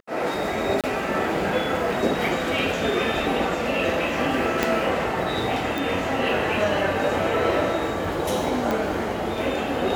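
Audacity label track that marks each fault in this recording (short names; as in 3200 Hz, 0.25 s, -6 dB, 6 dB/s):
0.810000	0.840000	gap 27 ms
4.630000	4.630000	pop -5 dBFS
5.780000	5.780000	pop
8.710000	8.710000	pop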